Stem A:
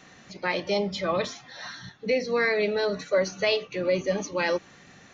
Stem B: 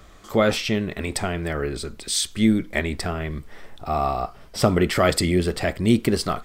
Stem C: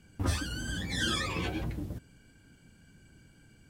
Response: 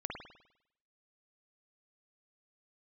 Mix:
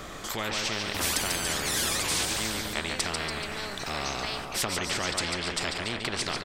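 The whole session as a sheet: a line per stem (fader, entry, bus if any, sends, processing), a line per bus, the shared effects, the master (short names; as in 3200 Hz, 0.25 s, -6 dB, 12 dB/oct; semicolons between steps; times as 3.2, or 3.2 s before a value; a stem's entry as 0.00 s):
-16.5 dB, 0.80 s, no send, no echo send, dry
-7.0 dB, 0.00 s, no send, echo send -10.5 dB, treble ducked by the level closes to 2200 Hz, closed at -14 dBFS
+2.0 dB, 0.75 s, no send, no echo send, wow and flutter 58 cents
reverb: off
echo: feedback echo 0.143 s, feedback 48%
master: spectral compressor 4:1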